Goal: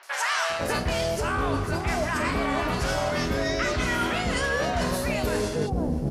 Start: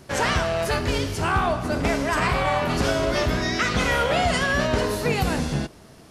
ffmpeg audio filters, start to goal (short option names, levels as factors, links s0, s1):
-filter_complex "[0:a]equalizer=f=130:t=o:w=0.99:g=-3,acrossover=split=790|3300[s0][s1][s2];[s2]adelay=30[s3];[s0]adelay=500[s4];[s4][s1][s3]amix=inputs=3:normalize=0,areverse,acompressor=threshold=0.0282:ratio=10,areverse,volume=2.66"